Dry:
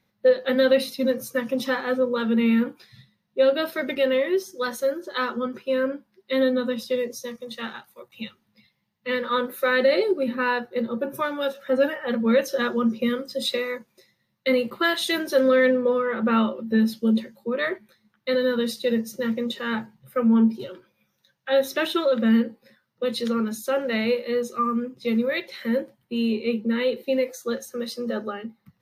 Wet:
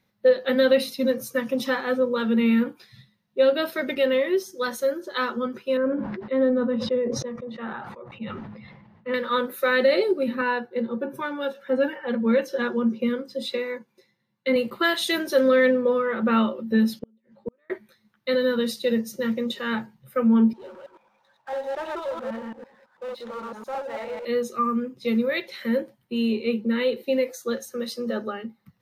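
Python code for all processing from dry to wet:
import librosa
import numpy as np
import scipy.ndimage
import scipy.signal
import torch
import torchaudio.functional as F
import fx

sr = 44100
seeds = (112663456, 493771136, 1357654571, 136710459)

y = fx.chain(x, sr, fx.lowpass(hz=1300.0, slope=12),
    fx.sustainer(db_per_s=33.0), at=(5.77, 9.14))
y = fx.chain(y, sr, fx.highpass(hz=120.0, slope=12),
    fx.high_shelf(hz=4200.0, db=-10.0),
    fx.notch_comb(f0_hz=630.0), at=(10.41, 14.56))
y = fx.chain(y, sr, fx.lowpass(hz=2400.0, slope=12),
    fx.gate_flip(shuts_db=-19.0, range_db=-41), at=(16.99, 17.7))
y = fx.chain(y, sr, fx.reverse_delay(ms=111, wet_db=-0.5),
    fx.bandpass_q(hz=870.0, q=4.0),
    fx.power_curve(exponent=0.7), at=(20.53, 24.25))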